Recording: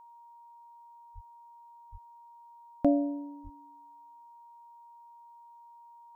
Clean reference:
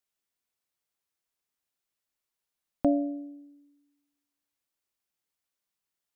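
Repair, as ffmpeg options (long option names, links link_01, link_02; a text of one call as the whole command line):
ffmpeg -i in.wav -filter_complex "[0:a]bandreject=frequency=940:width=30,asplit=3[link_01][link_02][link_03];[link_01]afade=type=out:start_time=1.14:duration=0.02[link_04];[link_02]highpass=frequency=140:width=0.5412,highpass=frequency=140:width=1.3066,afade=type=in:start_time=1.14:duration=0.02,afade=type=out:start_time=1.26:duration=0.02[link_05];[link_03]afade=type=in:start_time=1.26:duration=0.02[link_06];[link_04][link_05][link_06]amix=inputs=3:normalize=0,asplit=3[link_07][link_08][link_09];[link_07]afade=type=out:start_time=1.91:duration=0.02[link_10];[link_08]highpass=frequency=140:width=0.5412,highpass=frequency=140:width=1.3066,afade=type=in:start_time=1.91:duration=0.02,afade=type=out:start_time=2.03:duration=0.02[link_11];[link_09]afade=type=in:start_time=2.03:duration=0.02[link_12];[link_10][link_11][link_12]amix=inputs=3:normalize=0,asplit=3[link_13][link_14][link_15];[link_13]afade=type=out:start_time=3.43:duration=0.02[link_16];[link_14]highpass=frequency=140:width=0.5412,highpass=frequency=140:width=1.3066,afade=type=in:start_time=3.43:duration=0.02,afade=type=out:start_time=3.55:duration=0.02[link_17];[link_15]afade=type=in:start_time=3.55:duration=0.02[link_18];[link_16][link_17][link_18]amix=inputs=3:normalize=0" out.wav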